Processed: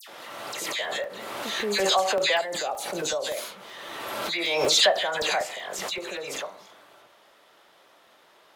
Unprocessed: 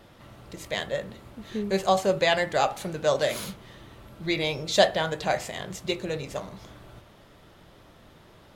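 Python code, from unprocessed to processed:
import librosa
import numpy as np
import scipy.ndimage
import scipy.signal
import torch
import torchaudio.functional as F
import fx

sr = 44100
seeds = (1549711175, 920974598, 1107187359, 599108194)

y = scipy.signal.sosfilt(scipy.signal.butter(2, 580.0, 'highpass', fs=sr, output='sos'), x)
y = fx.dispersion(y, sr, late='lows', ms=81.0, hz=2200.0)
y = fx.peak_eq(y, sr, hz=1700.0, db=-10.5, octaves=2.5, at=(2.41, 3.37))
y = fx.buffer_crackle(y, sr, first_s=0.66, period_s=0.19, block=64, kind='zero')
y = fx.pre_swell(y, sr, db_per_s=24.0)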